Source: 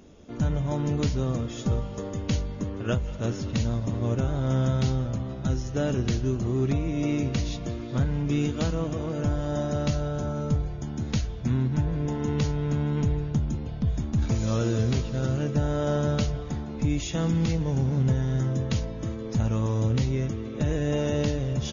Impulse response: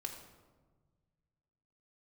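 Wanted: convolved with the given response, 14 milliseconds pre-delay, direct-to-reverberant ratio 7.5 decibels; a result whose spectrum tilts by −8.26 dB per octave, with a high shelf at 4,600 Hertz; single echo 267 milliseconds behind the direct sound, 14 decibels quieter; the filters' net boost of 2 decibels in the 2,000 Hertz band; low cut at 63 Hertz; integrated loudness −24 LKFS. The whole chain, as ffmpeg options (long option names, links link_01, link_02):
-filter_complex "[0:a]highpass=63,equalizer=frequency=2000:width_type=o:gain=4.5,highshelf=frequency=4600:gain=-9,aecho=1:1:267:0.2,asplit=2[link_01][link_02];[1:a]atrim=start_sample=2205,adelay=14[link_03];[link_02][link_03]afir=irnorm=-1:irlink=0,volume=-6dB[link_04];[link_01][link_04]amix=inputs=2:normalize=0,volume=2dB"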